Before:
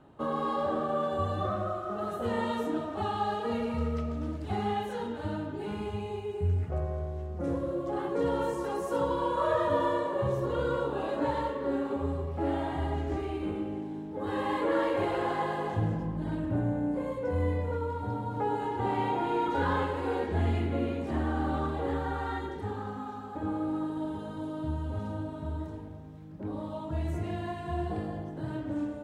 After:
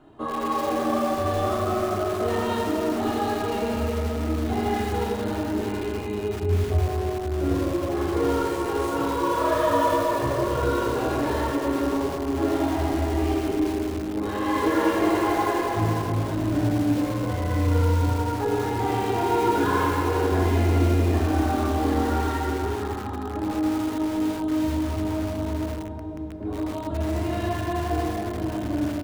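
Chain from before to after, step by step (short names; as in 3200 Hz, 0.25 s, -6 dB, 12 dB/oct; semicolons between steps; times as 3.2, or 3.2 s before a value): comb 2.9 ms, depth 47%; in parallel at -10 dB: soft clip -28.5 dBFS, distortion -12 dB; on the sum: shoebox room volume 180 m³, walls hard, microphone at 0.53 m; lo-fi delay 81 ms, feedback 35%, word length 5-bit, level -6.5 dB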